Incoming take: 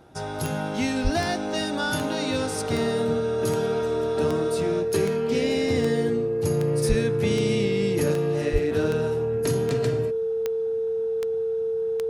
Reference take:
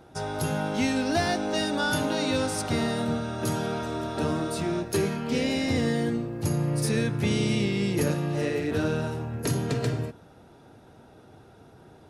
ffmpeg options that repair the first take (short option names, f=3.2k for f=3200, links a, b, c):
-filter_complex "[0:a]adeclick=t=4,bandreject=f=450:w=30,asplit=3[a][b][c];[a]afade=t=out:st=1.03:d=0.02[d];[b]highpass=f=140:w=0.5412,highpass=f=140:w=1.3066,afade=t=in:st=1.03:d=0.02,afade=t=out:st=1.15:d=0.02[e];[c]afade=t=in:st=1.15:d=0.02[f];[d][e][f]amix=inputs=3:normalize=0,asplit=3[g][h][i];[g]afade=t=out:st=6.88:d=0.02[j];[h]highpass=f=140:w=0.5412,highpass=f=140:w=1.3066,afade=t=in:st=6.88:d=0.02,afade=t=out:st=7:d=0.02[k];[i]afade=t=in:st=7:d=0.02[l];[j][k][l]amix=inputs=3:normalize=0,asplit=3[m][n][o];[m]afade=t=out:st=8.52:d=0.02[p];[n]highpass=f=140:w=0.5412,highpass=f=140:w=1.3066,afade=t=in:st=8.52:d=0.02,afade=t=out:st=8.64:d=0.02[q];[o]afade=t=in:st=8.64:d=0.02[r];[p][q][r]amix=inputs=3:normalize=0"